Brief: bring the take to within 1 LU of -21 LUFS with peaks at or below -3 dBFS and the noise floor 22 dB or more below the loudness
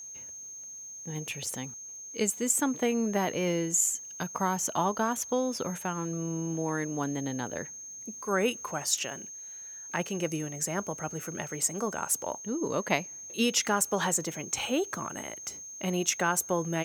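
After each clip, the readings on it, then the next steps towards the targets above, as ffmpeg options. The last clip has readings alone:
steady tone 6.4 kHz; tone level -41 dBFS; loudness -30.5 LUFS; peak level -9.0 dBFS; loudness target -21.0 LUFS
-> -af "bandreject=f=6400:w=30"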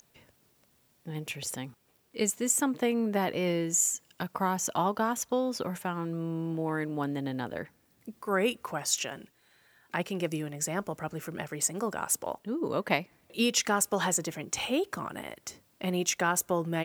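steady tone not found; loudness -30.5 LUFS; peak level -9.0 dBFS; loudness target -21.0 LUFS
-> -af "volume=2.99,alimiter=limit=0.708:level=0:latency=1"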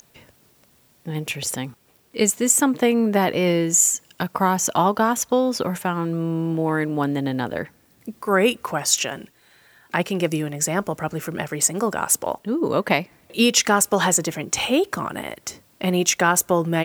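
loudness -21.0 LUFS; peak level -3.0 dBFS; noise floor -58 dBFS

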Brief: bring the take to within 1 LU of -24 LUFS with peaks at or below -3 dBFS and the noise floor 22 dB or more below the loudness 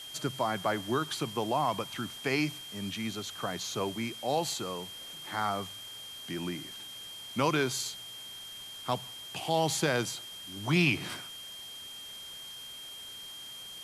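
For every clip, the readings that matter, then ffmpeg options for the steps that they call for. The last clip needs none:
steady tone 3.2 kHz; tone level -43 dBFS; noise floor -45 dBFS; noise floor target -56 dBFS; loudness -33.5 LUFS; peak level -14.5 dBFS; loudness target -24.0 LUFS
-> -af "bandreject=f=3200:w=30"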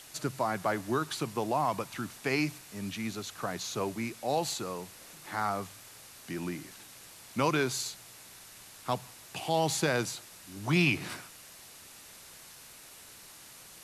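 steady tone not found; noise floor -52 dBFS; noise floor target -55 dBFS
-> -af "afftdn=nr=6:nf=-52"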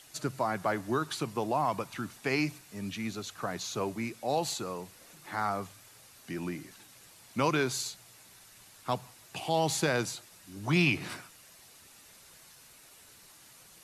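noise floor -56 dBFS; loudness -32.5 LUFS; peak level -14.5 dBFS; loudness target -24.0 LUFS
-> -af "volume=2.66"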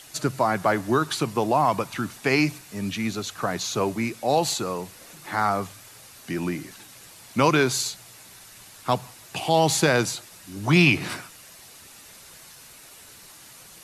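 loudness -24.0 LUFS; peak level -6.0 dBFS; noise floor -48 dBFS

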